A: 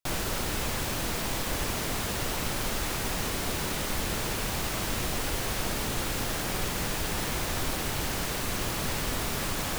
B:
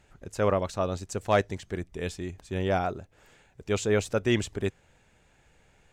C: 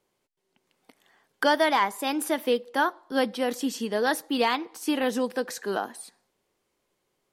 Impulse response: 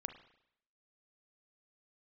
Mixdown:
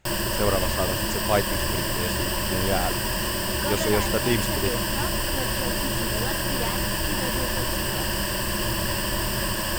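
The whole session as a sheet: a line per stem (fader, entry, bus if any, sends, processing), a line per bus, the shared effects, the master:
+2.5 dB, 0.00 s, no send, rippled EQ curve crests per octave 1.3, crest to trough 14 dB
+0.5 dB, 0.00 s, no send, none
-9.5 dB, 2.20 s, no send, none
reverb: none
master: none

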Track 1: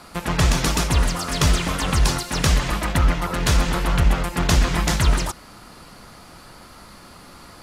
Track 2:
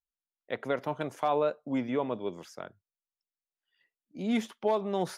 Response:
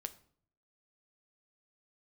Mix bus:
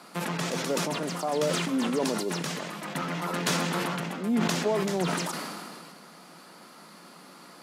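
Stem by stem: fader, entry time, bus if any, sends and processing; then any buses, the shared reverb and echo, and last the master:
-4.5 dB, 0.00 s, no send, auto duck -8 dB, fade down 0.30 s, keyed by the second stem
-5.5 dB, 0.00 s, no send, tilt shelf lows +9.5 dB, about 1.1 kHz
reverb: none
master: elliptic high-pass 160 Hz; decay stretcher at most 25 dB/s

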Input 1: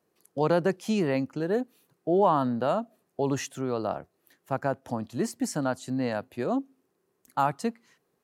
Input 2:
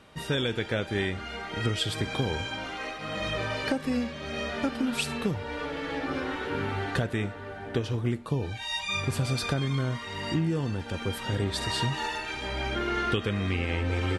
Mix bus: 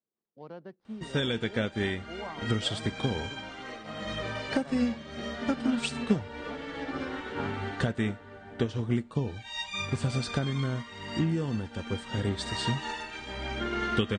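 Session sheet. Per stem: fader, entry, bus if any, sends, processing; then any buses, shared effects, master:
-13.0 dB, 0.00 s, no send, median filter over 15 samples; Savitzky-Golay filter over 15 samples
+2.0 dB, 0.85 s, no send, Chebyshev low-pass 9.1 kHz, order 6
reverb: none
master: peaking EQ 220 Hz +7 dB 0.25 oct; band-stop 2.5 kHz, Q 19; upward expansion 1.5:1, over -39 dBFS

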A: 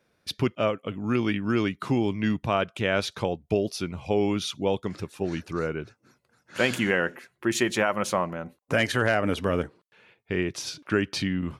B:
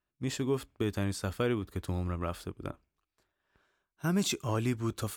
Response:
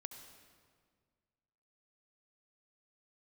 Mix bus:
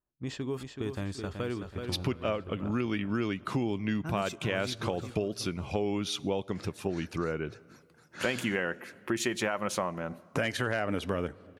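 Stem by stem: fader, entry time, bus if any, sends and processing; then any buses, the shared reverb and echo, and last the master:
+2.5 dB, 1.65 s, send -15.5 dB, no echo send, none
-2.0 dB, 0.00 s, no send, echo send -7.5 dB, level-controlled noise filter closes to 1 kHz, open at -25.5 dBFS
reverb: on, RT60 1.8 s, pre-delay 63 ms
echo: feedback delay 377 ms, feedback 38%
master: compression 3:1, threshold -30 dBFS, peak gain reduction 11.5 dB

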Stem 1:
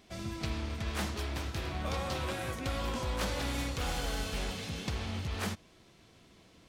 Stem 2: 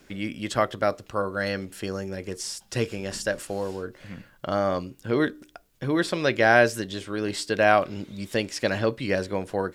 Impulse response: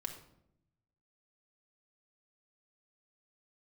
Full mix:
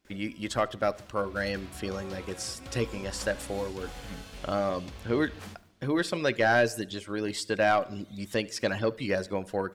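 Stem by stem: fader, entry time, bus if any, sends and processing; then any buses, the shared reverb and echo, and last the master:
1.18 s -21.5 dB -> 1.39 s -11.5 dB, 0.00 s, send -7 dB, echo send -14 dB, none
-3.5 dB, 0.00 s, send -14 dB, echo send -22.5 dB, reverb removal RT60 0.51 s; gate with hold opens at -45 dBFS; saturation -12 dBFS, distortion -17 dB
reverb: on, RT60 0.75 s, pre-delay 4 ms
echo: feedback delay 73 ms, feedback 50%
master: none

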